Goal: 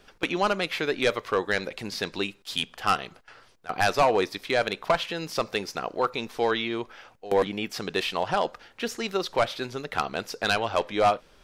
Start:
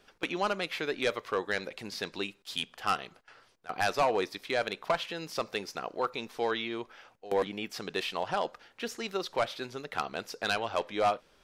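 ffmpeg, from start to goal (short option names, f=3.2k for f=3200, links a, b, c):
-af "lowshelf=f=110:g=7,volume=5.5dB"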